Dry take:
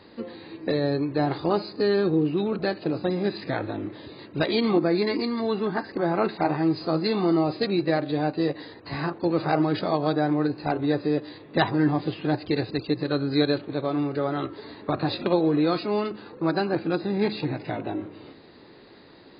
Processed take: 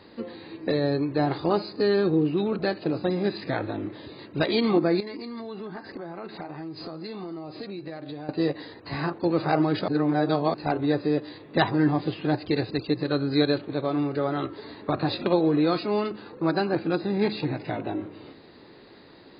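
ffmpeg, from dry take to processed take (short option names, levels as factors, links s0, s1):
-filter_complex "[0:a]asettb=1/sr,asplit=3[s0][s1][s2];[s0]atrim=end=5.004[s3];[s1]atrim=start=5:end=8.29,asetpts=PTS-STARTPTS,afade=t=in:d=0.004:c=qsin,afade=t=out:st=3.286:d=0.004:c=qsin,acompressor=threshold=0.0224:ratio=8:attack=3.2:release=140:knee=1:detection=peak[s4];[s2]atrim=start=8.286[s5];[s3][s4]acrossfade=d=0.004:c1=hsin:c2=qsin[s6];[s6][s5]acrossfade=d=0.004:c1=qsin:c2=hsin,asplit=3[s7][s8][s9];[s7]atrim=end=9.882[s10];[s8]atrim=start=9.878:end=10.542,asetpts=PTS-STARTPTS,areverse[s11];[s9]atrim=start=10.538[s12];[s10][s11]acrossfade=d=0.004:c1=hsin:c2=hsin[s13];[s13][s12]acrossfade=d=0.004:c1=hsin:c2=hsin"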